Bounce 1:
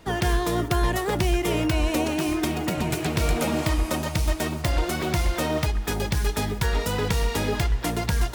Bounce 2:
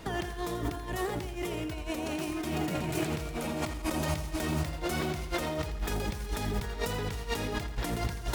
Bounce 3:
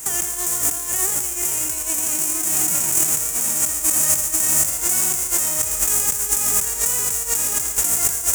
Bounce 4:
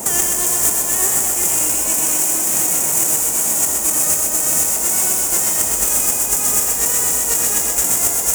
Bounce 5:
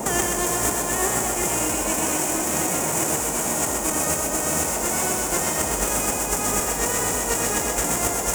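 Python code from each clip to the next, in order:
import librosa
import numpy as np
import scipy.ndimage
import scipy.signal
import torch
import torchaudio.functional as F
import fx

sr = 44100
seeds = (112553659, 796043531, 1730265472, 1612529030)

y1 = fx.over_compress(x, sr, threshold_db=-31.0, ratio=-1.0)
y1 = fx.echo_crushed(y1, sr, ms=84, feedback_pct=55, bits=9, wet_db=-11)
y1 = F.gain(torch.from_numpy(y1), -3.0).numpy()
y2 = fx.envelope_flatten(y1, sr, power=0.3)
y2 = fx.high_shelf_res(y2, sr, hz=5500.0, db=11.0, q=3.0)
y2 = F.gain(torch.from_numpy(y2), 2.5).numpy()
y3 = fx.echo_thinned(y2, sr, ms=127, feedback_pct=69, hz=420.0, wet_db=-4)
y3 = fx.rider(y3, sr, range_db=10, speed_s=0.5)
y3 = fx.dmg_noise_band(y3, sr, seeds[0], low_hz=150.0, high_hz=930.0, level_db=-35.0)
y3 = F.gain(torch.from_numpy(y3), 1.0).numpy()
y4 = fx.lowpass(y3, sr, hz=1900.0, slope=6)
y4 = F.gain(torch.from_numpy(y4), 4.0).numpy()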